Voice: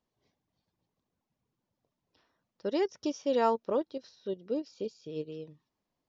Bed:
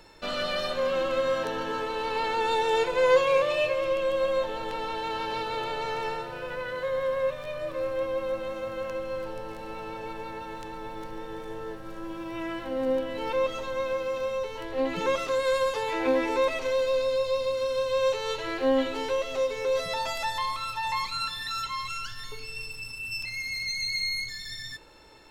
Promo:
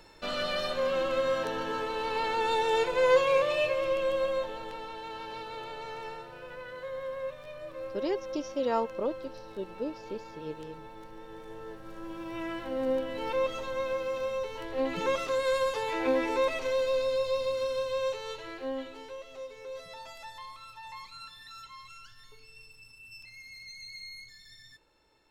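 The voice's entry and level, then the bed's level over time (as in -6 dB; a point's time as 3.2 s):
5.30 s, -2.0 dB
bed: 4.11 s -2 dB
4.92 s -9 dB
11.12 s -9 dB
12.35 s -2.5 dB
17.62 s -2.5 dB
19.11 s -15 dB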